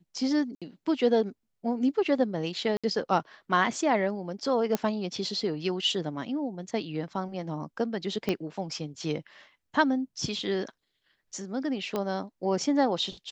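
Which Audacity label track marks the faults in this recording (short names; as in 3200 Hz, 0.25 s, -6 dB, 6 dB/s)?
0.550000	0.620000	gap 66 ms
2.770000	2.840000	gap 66 ms
4.750000	4.750000	pop -12 dBFS
8.290000	8.290000	pop -14 dBFS
11.960000	11.960000	pop -17 dBFS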